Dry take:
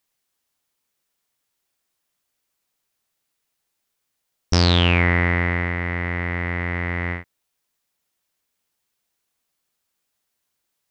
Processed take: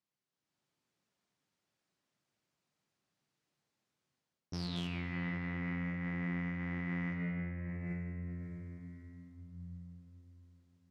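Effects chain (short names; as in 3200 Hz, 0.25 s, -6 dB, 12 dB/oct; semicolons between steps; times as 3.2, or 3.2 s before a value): flange 1.7 Hz, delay 5.3 ms, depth 2.6 ms, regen -74%; gate -29 dBFS, range -9 dB; in parallel at -8 dB: wrapped overs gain 8.5 dB; on the sum: LPF 6100 Hz 12 dB/oct; tone controls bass +12 dB, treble +6 dB; on a send at -6 dB: reverb RT60 3.0 s, pre-delay 3 ms; on the sum: AGC gain up to 9 dB; limiter -27 dBFS, peak gain reduction 25 dB; HPF 150 Hz 12 dB/oct; darkening echo 0.271 s, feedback 80%, low-pass 3400 Hz, level -19.5 dB; mismatched tape noise reduction decoder only; gain -1.5 dB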